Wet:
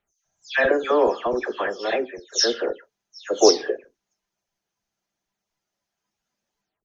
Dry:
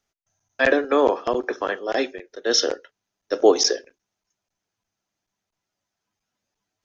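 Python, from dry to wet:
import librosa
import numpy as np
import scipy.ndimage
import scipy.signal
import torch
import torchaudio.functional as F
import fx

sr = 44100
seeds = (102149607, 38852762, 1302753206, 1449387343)

y = fx.spec_delay(x, sr, highs='early', ms=232)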